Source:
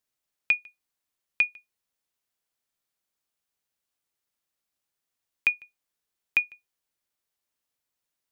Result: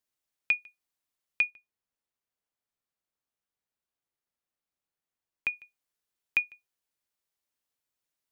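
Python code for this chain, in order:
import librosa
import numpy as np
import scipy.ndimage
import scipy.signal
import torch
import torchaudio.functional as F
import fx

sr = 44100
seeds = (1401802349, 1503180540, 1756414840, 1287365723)

y = fx.high_shelf(x, sr, hz=2300.0, db=-8.0, at=(1.5, 5.53))
y = y * librosa.db_to_amplitude(-3.0)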